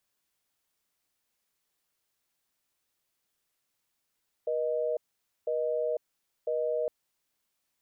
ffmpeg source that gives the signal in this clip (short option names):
-f lavfi -i "aevalsrc='0.0335*(sin(2*PI*480*t)+sin(2*PI*620*t))*clip(min(mod(t,1),0.5-mod(t,1))/0.005,0,1)':d=2.41:s=44100"